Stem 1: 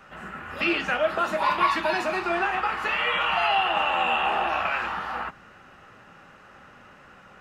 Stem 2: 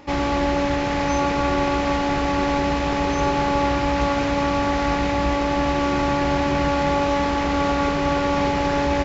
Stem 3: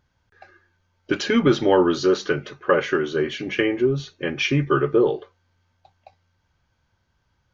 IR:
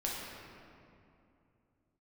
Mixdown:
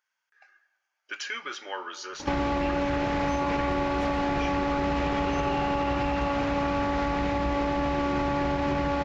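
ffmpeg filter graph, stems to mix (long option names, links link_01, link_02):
-filter_complex "[0:a]adelay=2000,volume=-14dB,asplit=2[link_01][link_02];[link_02]volume=-9.5dB[link_03];[1:a]highshelf=frequency=5100:gain=-10.5,adelay=2200,volume=0dB[link_04];[2:a]highpass=1500,equalizer=frequency=3900:width_type=o:width=0.53:gain=-9.5,volume=-9.5dB,asplit=3[link_05][link_06][link_07];[link_06]volume=-12dB[link_08];[link_07]apad=whole_len=414798[link_09];[link_01][link_09]sidechaincompress=threshold=-46dB:ratio=8:attack=16:release=360[link_10];[link_04][link_05]amix=inputs=2:normalize=0,acontrast=29,alimiter=limit=-13.5dB:level=0:latency=1:release=207,volume=0dB[link_11];[3:a]atrim=start_sample=2205[link_12];[link_03][link_08]amix=inputs=2:normalize=0[link_13];[link_13][link_12]afir=irnorm=-1:irlink=0[link_14];[link_10][link_11][link_14]amix=inputs=3:normalize=0,acompressor=threshold=-23dB:ratio=6"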